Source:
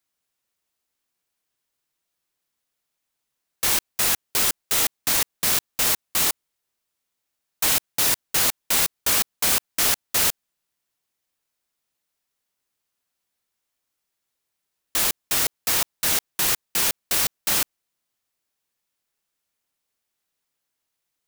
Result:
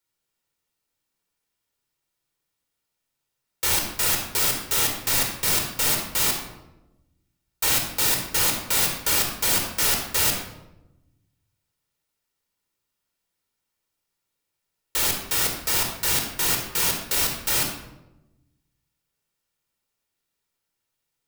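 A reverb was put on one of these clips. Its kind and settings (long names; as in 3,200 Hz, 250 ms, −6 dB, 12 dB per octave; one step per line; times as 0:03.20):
rectangular room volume 3,500 cubic metres, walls furnished, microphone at 4.5 metres
level −3.5 dB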